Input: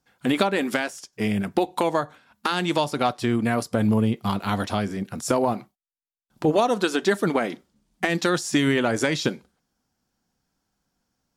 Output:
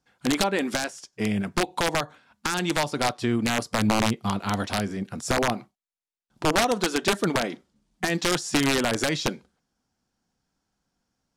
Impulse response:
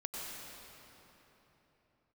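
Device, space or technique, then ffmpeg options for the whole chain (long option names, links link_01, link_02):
overflowing digital effects unit: -af "aeval=exprs='(mod(4.22*val(0)+1,2)-1)/4.22':channel_layout=same,lowpass=9600,volume=-1.5dB"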